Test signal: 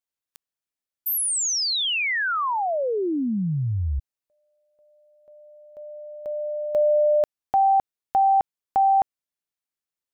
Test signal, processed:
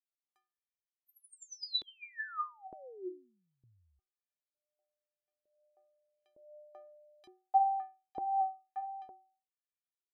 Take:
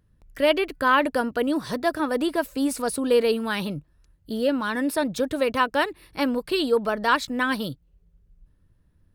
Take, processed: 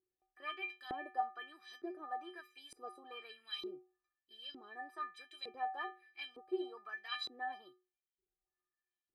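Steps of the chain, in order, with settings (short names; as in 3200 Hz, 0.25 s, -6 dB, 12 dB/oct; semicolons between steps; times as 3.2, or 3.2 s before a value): metallic resonator 360 Hz, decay 0.41 s, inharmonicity 0.03; LFO band-pass saw up 1.1 Hz 360–4000 Hz; gain +7.5 dB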